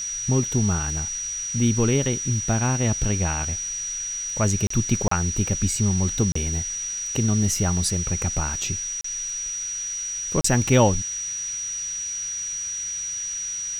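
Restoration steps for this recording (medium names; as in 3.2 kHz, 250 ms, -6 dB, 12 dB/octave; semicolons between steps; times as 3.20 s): band-stop 5.8 kHz, Q 30; interpolate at 4.67/5.08/6.32/9.01/10.41 s, 34 ms; noise print and reduce 30 dB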